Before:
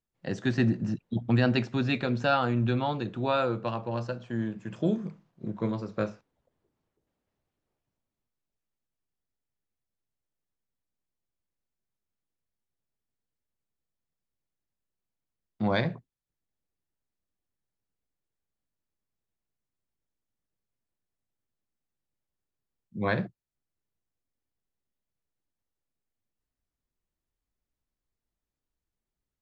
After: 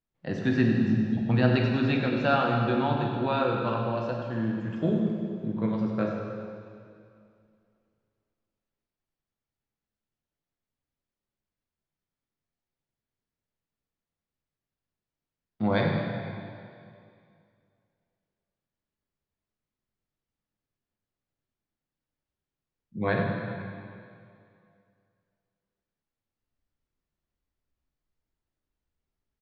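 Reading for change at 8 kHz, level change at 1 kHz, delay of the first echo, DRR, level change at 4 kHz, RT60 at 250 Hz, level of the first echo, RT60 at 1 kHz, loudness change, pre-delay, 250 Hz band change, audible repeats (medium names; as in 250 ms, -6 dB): no reading, +2.5 dB, 98 ms, 0.0 dB, 0.0 dB, 2.3 s, -10.5 dB, 2.4 s, +2.0 dB, 6 ms, +3.5 dB, 1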